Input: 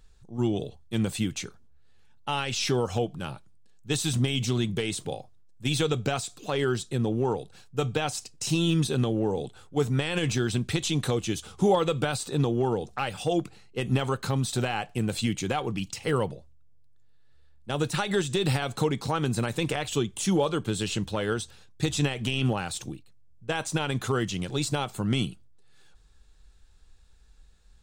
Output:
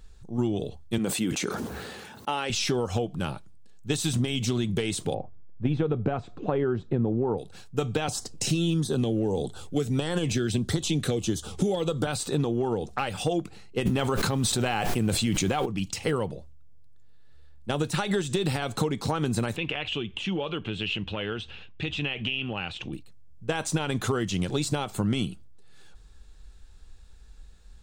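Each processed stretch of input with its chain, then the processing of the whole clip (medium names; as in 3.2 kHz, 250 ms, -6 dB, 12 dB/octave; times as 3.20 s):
0.98–2.50 s: high-pass 250 Hz + peaking EQ 4.5 kHz -4.5 dB 2.8 oct + decay stretcher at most 25 dB/s
5.14–7.38 s: low-pass 1.9 kHz + tilt shelf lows +4.5 dB, about 1.4 kHz
8.08–12.07 s: LFO notch sine 1.6 Hz 890–2600 Hz + three bands compressed up and down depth 40%
13.85–15.65 s: added noise pink -55 dBFS + level flattener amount 100%
19.56–22.93 s: compression 2:1, threshold -42 dBFS + resonant low-pass 2.8 kHz
whole clip: peaking EQ 130 Hz -6.5 dB 0.21 oct; compression, threshold -29 dBFS; bass shelf 490 Hz +3.5 dB; trim +4 dB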